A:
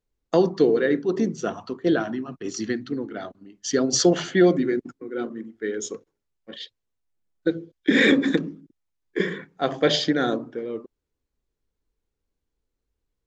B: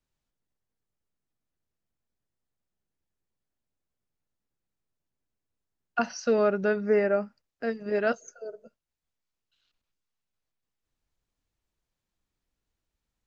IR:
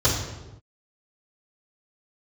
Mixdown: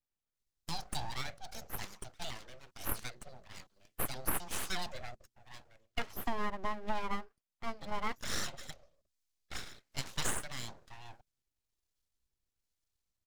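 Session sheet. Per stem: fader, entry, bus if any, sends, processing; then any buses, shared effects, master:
−7.0 dB, 0.35 s, no send, drawn EQ curve 110 Hz 0 dB, 160 Hz −28 dB, 260 Hz −11 dB, 750 Hz −9 dB, 4,800 Hz +13 dB; rotating-speaker cabinet horn 1.1 Hz; automatic ducking −7 dB, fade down 1.00 s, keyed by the second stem
−1.0 dB, 0.00 s, no send, expander for the loud parts 1.5 to 1, over −35 dBFS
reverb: not used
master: full-wave rectification; downward compressor 5 to 1, threshold −29 dBFS, peak gain reduction 10.5 dB

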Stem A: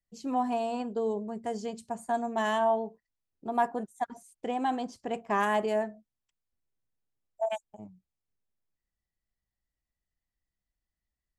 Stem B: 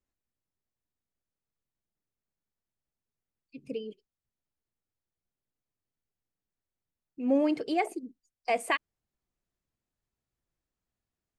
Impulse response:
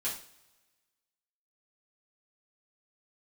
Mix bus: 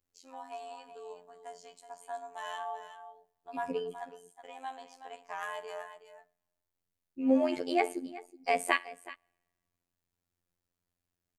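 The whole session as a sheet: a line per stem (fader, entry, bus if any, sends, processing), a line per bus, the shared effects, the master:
−8.0 dB, 0.00 s, send −10.5 dB, echo send −9 dB, high-pass filter 730 Hz 12 dB per octave; noise gate with hold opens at −46 dBFS
+1.5 dB, 0.00 s, send −17.5 dB, echo send −17 dB, no processing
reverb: on, pre-delay 3 ms
echo: single-tap delay 373 ms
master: high-shelf EQ 9,700 Hz +4 dB; phases set to zero 87.8 Hz

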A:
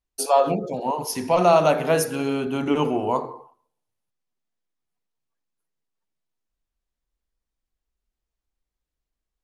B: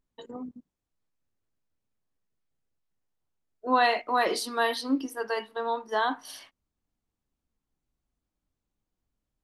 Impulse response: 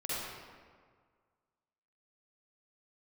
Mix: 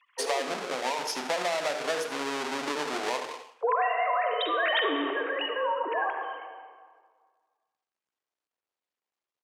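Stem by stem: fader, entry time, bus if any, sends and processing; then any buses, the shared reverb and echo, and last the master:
−2.5 dB, 0.00 s, no send, echo send −13.5 dB, each half-wave held at its own peak; downward compressor, threshold −21 dBFS, peak gain reduction 11 dB
−2.5 dB, 0.00 s, send −5.5 dB, no echo send, three sine waves on the formant tracks; background raised ahead of every attack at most 21 dB per second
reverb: on, RT60 1.8 s, pre-delay 43 ms
echo: repeating echo 79 ms, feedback 37%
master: band-pass filter 500–7,000 Hz; downward compressor 3 to 1, threshold −24 dBFS, peak gain reduction 6.5 dB

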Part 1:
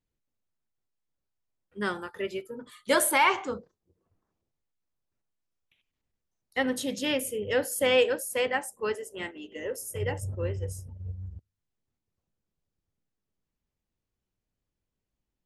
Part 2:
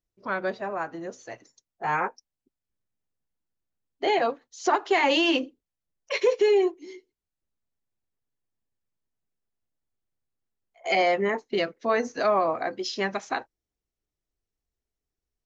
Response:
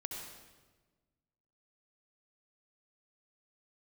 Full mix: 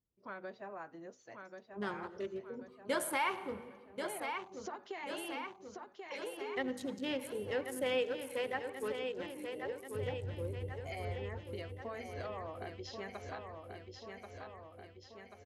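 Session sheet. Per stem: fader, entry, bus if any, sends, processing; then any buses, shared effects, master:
−4.5 dB, 0.00 s, send −11.5 dB, echo send −8 dB, adaptive Wiener filter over 25 samples
−13.5 dB, 0.00 s, no send, echo send −7 dB, downward compressor, threshold −24 dBFS, peak gain reduction 7.5 dB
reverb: on, RT60 1.3 s, pre-delay 61 ms
echo: repeating echo 1,085 ms, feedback 56%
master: high-pass filter 50 Hz; high-shelf EQ 5,800 Hz −5 dB; downward compressor 1.5 to 1, threshold −44 dBFS, peak gain reduction 8.5 dB

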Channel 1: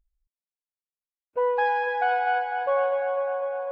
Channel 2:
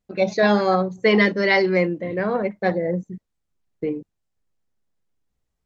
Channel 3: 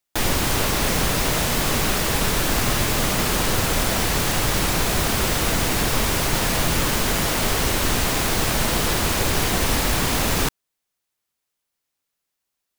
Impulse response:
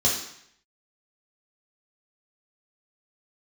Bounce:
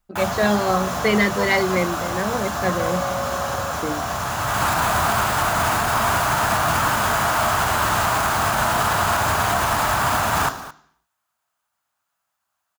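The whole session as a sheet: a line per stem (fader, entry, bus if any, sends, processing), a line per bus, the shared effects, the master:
−0.5 dB, 0.00 s, muted 0:01.44–0:02.80, no send, no echo send, no processing
−1.0 dB, 0.00 s, no send, no echo send, no processing
0.0 dB, 0.00 s, send −20 dB, echo send −16.5 dB, high-pass filter 61 Hz; flat-topped bell 960 Hz +13 dB; brickwall limiter −10.5 dBFS, peak gain reduction 8.5 dB; automatic ducking −16 dB, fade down 0.45 s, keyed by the second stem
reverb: on, RT60 0.70 s, pre-delay 3 ms
echo: single-tap delay 219 ms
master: parametric band 470 Hz −3 dB 0.76 octaves

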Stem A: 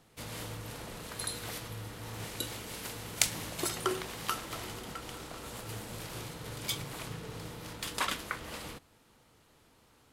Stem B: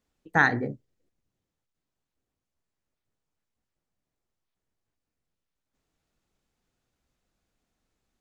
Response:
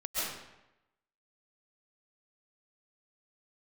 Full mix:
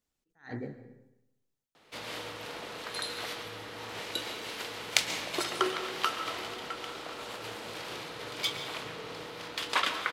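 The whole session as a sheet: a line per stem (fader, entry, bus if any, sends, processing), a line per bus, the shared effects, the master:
+2.5 dB, 1.75 s, send −13.5 dB, high-pass filter 55 Hz; three-way crossover with the lows and the highs turned down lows −14 dB, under 280 Hz, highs −20 dB, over 4,500 Hz
−9.0 dB, 0.00 s, send −16.5 dB, level that may rise only so fast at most 200 dB per second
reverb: on, RT60 0.90 s, pre-delay 95 ms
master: high-shelf EQ 3,700 Hz +8.5 dB

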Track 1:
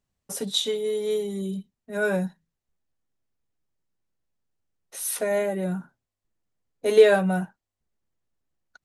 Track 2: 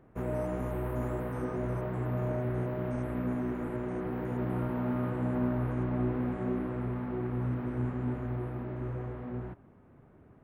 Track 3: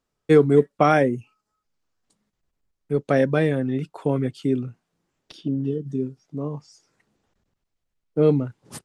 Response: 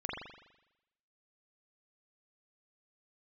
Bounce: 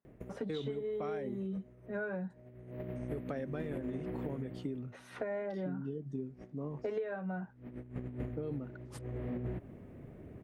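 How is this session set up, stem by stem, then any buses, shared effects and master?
−3.0 dB, 0.00 s, no send, Chebyshev band-pass filter 180–1,700 Hz, order 2
+1.5 dB, 0.05 s, no send, flat-topped bell 1,100 Hz −9.5 dB 1.2 octaves; compressor whose output falls as the input rises −38 dBFS, ratio −0.5; automatic ducking −17 dB, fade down 0.40 s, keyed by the first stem
−10.0 dB, 0.20 s, no send, brickwall limiter −14.5 dBFS, peak gain reduction 9.5 dB; high-shelf EQ 4,800 Hz −7.5 dB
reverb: not used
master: downward compressor 16 to 1, threshold −34 dBFS, peak gain reduction 21.5 dB

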